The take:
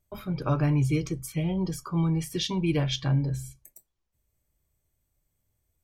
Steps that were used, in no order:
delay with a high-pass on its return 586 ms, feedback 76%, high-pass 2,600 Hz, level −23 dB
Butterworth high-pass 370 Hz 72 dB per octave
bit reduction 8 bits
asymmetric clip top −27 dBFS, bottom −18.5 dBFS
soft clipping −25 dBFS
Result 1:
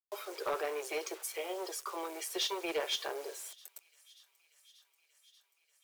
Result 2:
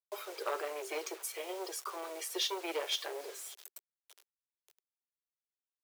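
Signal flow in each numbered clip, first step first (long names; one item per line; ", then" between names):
bit reduction, then asymmetric clip, then Butterworth high-pass, then soft clipping, then delay with a high-pass on its return
delay with a high-pass on its return, then soft clipping, then asymmetric clip, then bit reduction, then Butterworth high-pass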